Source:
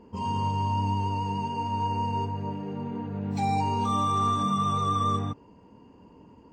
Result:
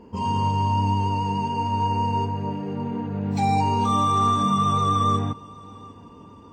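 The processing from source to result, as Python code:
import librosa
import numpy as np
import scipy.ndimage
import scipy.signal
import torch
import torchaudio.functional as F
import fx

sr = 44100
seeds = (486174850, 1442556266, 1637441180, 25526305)

y = fx.echo_feedback(x, sr, ms=756, feedback_pct=39, wet_db=-23.0)
y = y * librosa.db_to_amplitude(5.0)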